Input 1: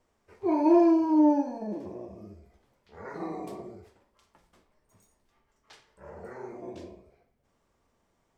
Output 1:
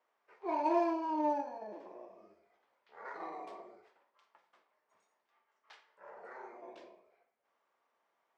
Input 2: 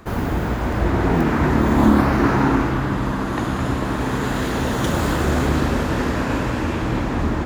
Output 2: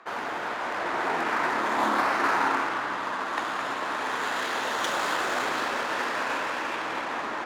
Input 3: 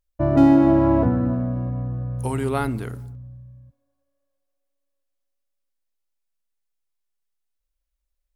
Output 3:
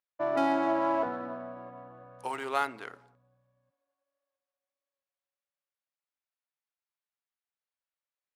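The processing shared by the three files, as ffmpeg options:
-af "highpass=780,adynamicsmooth=sensitivity=7.5:basefreq=3.1k"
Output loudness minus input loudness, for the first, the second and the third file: -10.5, -7.5, -10.5 LU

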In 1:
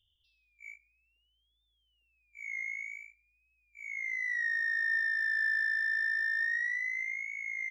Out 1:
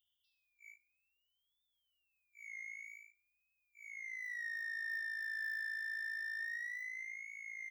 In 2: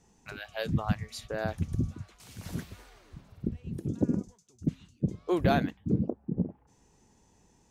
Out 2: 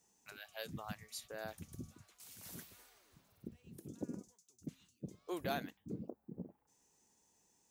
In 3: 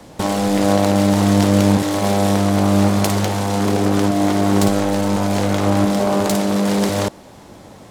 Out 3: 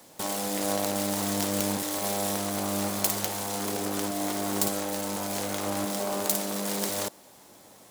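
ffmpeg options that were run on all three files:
-af "aemphasis=mode=production:type=bsi,volume=-11.5dB"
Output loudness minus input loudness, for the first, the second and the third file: -10.5, -15.5, -11.5 LU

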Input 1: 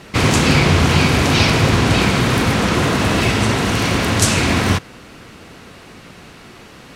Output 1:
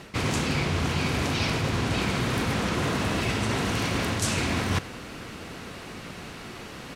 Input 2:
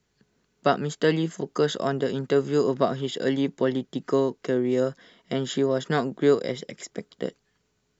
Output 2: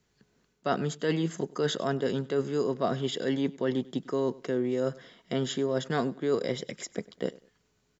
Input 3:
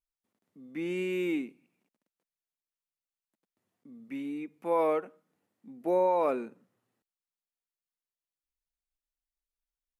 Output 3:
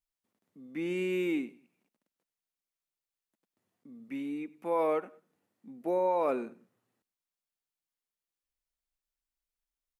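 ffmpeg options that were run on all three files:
-af "areverse,acompressor=threshold=-24dB:ratio=6,areverse,aecho=1:1:98|196:0.0841|0.0236"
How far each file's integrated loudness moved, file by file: -11.5, -5.0, -1.5 LU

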